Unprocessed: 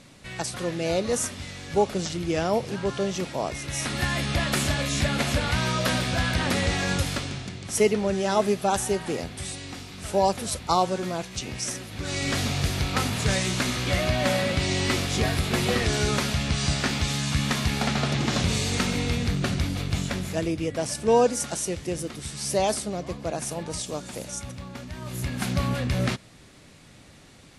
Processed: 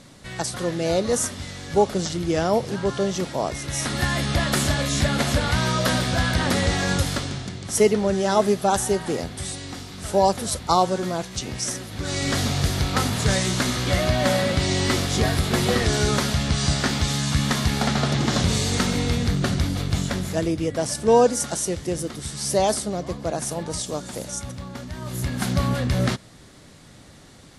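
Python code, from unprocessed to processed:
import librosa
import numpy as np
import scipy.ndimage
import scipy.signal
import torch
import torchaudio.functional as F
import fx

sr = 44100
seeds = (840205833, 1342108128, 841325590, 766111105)

y = fx.peak_eq(x, sr, hz=2500.0, db=-6.5, octaves=0.43)
y = y * librosa.db_to_amplitude(3.5)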